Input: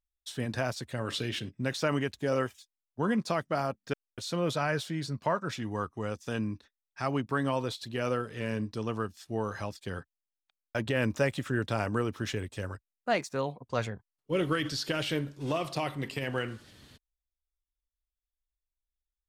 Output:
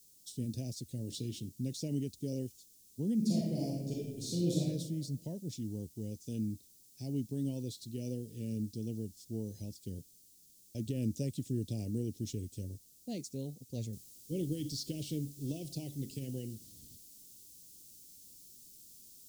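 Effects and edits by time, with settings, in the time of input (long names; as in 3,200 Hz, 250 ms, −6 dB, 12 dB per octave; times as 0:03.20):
0:03.15–0:04.58: thrown reverb, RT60 1.2 s, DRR −5 dB
0:13.93: noise floor change −58 dB −52 dB
whole clip: Chebyshev band-stop filter 270–5,900 Hz, order 2; level −2.5 dB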